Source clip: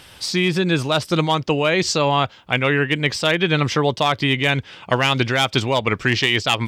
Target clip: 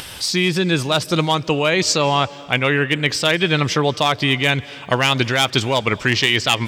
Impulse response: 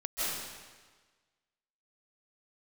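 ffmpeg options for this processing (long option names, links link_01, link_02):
-filter_complex "[0:a]highshelf=frequency=4600:gain=6.5,acompressor=mode=upward:threshold=-26dB:ratio=2.5,asplit=2[link_01][link_02];[1:a]atrim=start_sample=2205,asetrate=40131,aresample=44100[link_03];[link_02][link_03]afir=irnorm=-1:irlink=0,volume=-27dB[link_04];[link_01][link_04]amix=inputs=2:normalize=0"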